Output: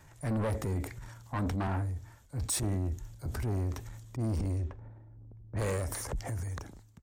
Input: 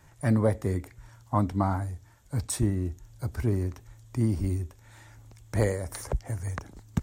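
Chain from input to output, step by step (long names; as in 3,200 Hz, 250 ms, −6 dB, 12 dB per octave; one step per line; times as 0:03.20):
fade-out on the ending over 0.85 s
0:04.16–0:05.62: low-pass that shuts in the quiet parts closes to 310 Hz, open at −22.5 dBFS
transient designer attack −4 dB, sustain +8 dB
soft clipping −28 dBFS, distortion −8 dB
0:01.67–0:03.26: multiband upward and downward expander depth 40%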